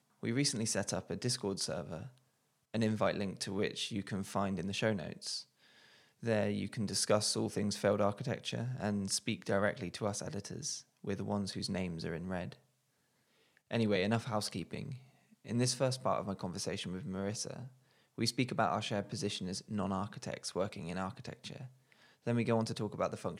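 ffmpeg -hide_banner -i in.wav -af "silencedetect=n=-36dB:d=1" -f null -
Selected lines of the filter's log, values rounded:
silence_start: 12.52
silence_end: 13.71 | silence_duration: 1.19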